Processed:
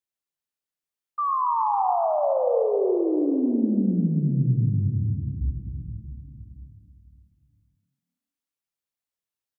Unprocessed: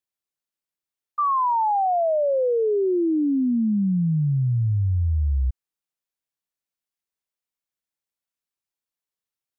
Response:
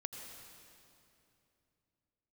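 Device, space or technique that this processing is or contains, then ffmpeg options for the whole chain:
stairwell: -filter_complex "[0:a]asplit=3[a][b][c];[a]afade=t=out:st=4.88:d=0.02[d];[b]agate=range=-33dB:threshold=-12dB:ratio=3:detection=peak,afade=t=in:st=4.88:d=0.02,afade=t=out:st=5.4:d=0.02[e];[c]afade=t=in:st=5.4:d=0.02[f];[d][e][f]amix=inputs=3:normalize=0,asplit=7[g][h][i][j][k][l][m];[h]adelay=138,afreqshift=37,volume=-12.5dB[n];[i]adelay=276,afreqshift=74,volume=-17.9dB[o];[j]adelay=414,afreqshift=111,volume=-23.2dB[p];[k]adelay=552,afreqshift=148,volume=-28.6dB[q];[l]adelay=690,afreqshift=185,volume=-33.9dB[r];[m]adelay=828,afreqshift=222,volume=-39.3dB[s];[g][n][o][p][q][r][s]amix=inputs=7:normalize=0[t];[1:a]atrim=start_sample=2205[u];[t][u]afir=irnorm=-1:irlink=0"

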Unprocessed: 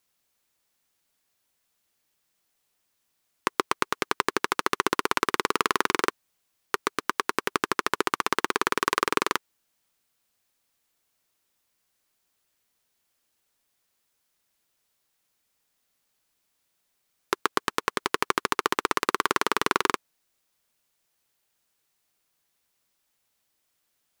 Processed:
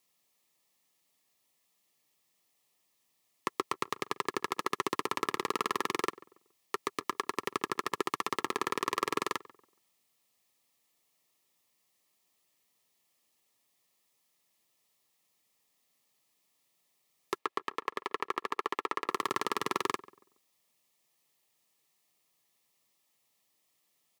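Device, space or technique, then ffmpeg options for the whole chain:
PA system with an anti-feedback notch: -filter_complex "[0:a]highpass=f=110:w=0.5412,highpass=f=110:w=1.3066,asuperstop=centerf=1500:order=8:qfactor=4.7,alimiter=limit=-13dB:level=0:latency=1:release=12,asplit=3[a][b][c];[a]afade=t=out:st=17.37:d=0.02[d];[b]bass=f=250:g=-12,treble=f=4k:g=-11,afade=t=in:st=17.37:d=0.02,afade=t=out:st=19.09:d=0.02[e];[c]afade=t=in:st=19.09:d=0.02[f];[d][e][f]amix=inputs=3:normalize=0,asplit=2[g][h];[h]adelay=140,lowpass=f=1.4k:p=1,volume=-19dB,asplit=2[i][j];[j]adelay=140,lowpass=f=1.4k:p=1,volume=0.34,asplit=2[k][l];[l]adelay=140,lowpass=f=1.4k:p=1,volume=0.34[m];[g][i][k][m]amix=inputs=4:normalize=0"

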